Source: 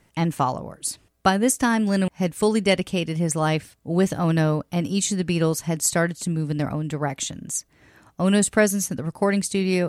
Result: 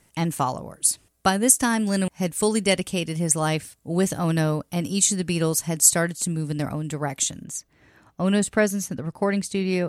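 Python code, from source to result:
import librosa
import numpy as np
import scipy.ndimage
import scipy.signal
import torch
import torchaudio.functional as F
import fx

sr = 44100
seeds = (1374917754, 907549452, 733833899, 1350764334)

y = fx.peak_eq(x, sr, hz=10000.0, db=fx.steps((0.0, 10.5), (7.44, -4.0)), octaves=1.5)
y = y * 10.0 ** (-2.0 / 20.0)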